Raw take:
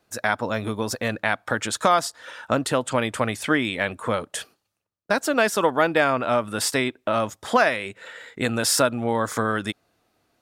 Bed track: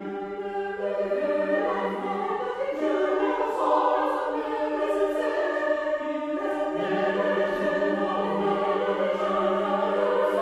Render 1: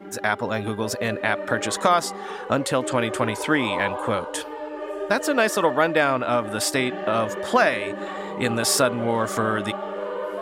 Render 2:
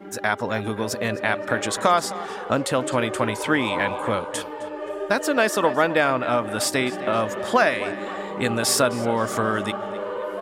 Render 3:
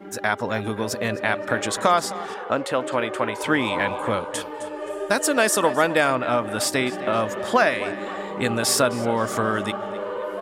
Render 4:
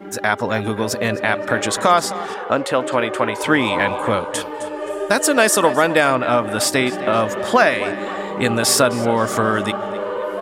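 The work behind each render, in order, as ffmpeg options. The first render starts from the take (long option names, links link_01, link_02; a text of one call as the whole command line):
ffmpeg -i in.wav -i bed.wav -filter_complex "[1:a]volume=-6dB[link_01];[0:a][link_01]amix=inputs=2:normalize=0" out.wav
ffmpeg -i in.wav -filter_complex "[0:a]asplit=2[link_01][link_02];[link_02]adelay=261,lowpass=frequency=4900:poles=1,volume=-15.5dB,asplit=2[link_03][link_04];[link_04]adelay=261,lowpass=frequency=4900:poles=1,volume=0.46,asplit=2[link_05][link_06];[link_06]adelay=261,lowpass=frequency=4900:poles=1,volume=0.46,asplit=2[link_07][link_08];[link_08]adelay=261,lowpass=frequency=4900:poles=1,volume=0.46[link_09];[link_01][link_03][link_05][link_07][link_09]amix=inputs=5:normalize=0" out.wav
ffmpeg -i in.wav -filter_complex "[0:a]asettb=1/sr,asplit=3[link_01][link_02][link_03];[link_01]atrim=end=2.344[link_04];[link_02]atrim=start=2.34:end=3.41,asetpts=PTS-STARTPTS,afade=type=in:duration=0.004:curve=qsin,afade=type=out:start_time=1.066:duration=0.004:curve=qsin,bass=frequency=250:gain=-9,treble=frequency=4000:gain=-8[link_05];[link_03]atrim=start=3.406[link_06];[link_04][link_05]acrossfade=duration=0.004:curve1=hsin:curve2=qsin[link_07];[link_07][link_06]acrossfade=duration=0.004:curve1=qsin:curve2=hsin,asettb=1/sr,asplit=3[link_08][link_09][link_10];[link_08]atrim=end=4.544[link_11];[link_09]atrim=start=4.54:end=6.16,asetpts=PTS-STARTPTS,afade=type=in:duration=0.004:curve=qsin,afade=type=out:start_time=1.616:duration=0.004:curve=qsin,equalizer=frequency=9200:width_type=o:width=1.2:gain=10.5[link_12];[link_10]atrim=start=6.156[link_13];[link_11][link_12]acrossfade=duration=0.004:curve1=hsin:curve2=qsin[link_14];[link_14][link_13]acrossfade=duration=0.004:curve1=qsin:curve2=hsin" out.wav
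ffmpeg -i in.wav -af "volume=5dB,alimiter=limit=-2dB:level=0:latency=1" out.wav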